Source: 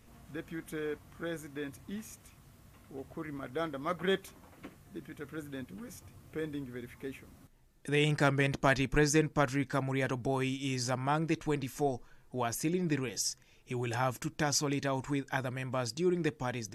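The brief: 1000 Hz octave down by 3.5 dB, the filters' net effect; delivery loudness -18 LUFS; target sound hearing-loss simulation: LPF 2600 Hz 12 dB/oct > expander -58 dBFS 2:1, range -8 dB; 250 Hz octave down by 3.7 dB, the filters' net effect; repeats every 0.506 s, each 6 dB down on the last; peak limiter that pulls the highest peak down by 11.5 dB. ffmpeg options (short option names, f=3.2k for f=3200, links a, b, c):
-af "equalizer=f=250:t=o:g=-5,equalizer=f=1k:t=o:g=-4.5,alimiter=level_in=4dB:limit=-24dB:level=0:latency=1,volume=-4dB,lowpass=2.6k,aecho=1:1:506|1012|1518|2024|2530|3036:0.501|0.251|0.125|0.0626|0.0313|0.0157,agate=range=-8dB:threshold=-58dB:ratio=2,volume=21.5dB"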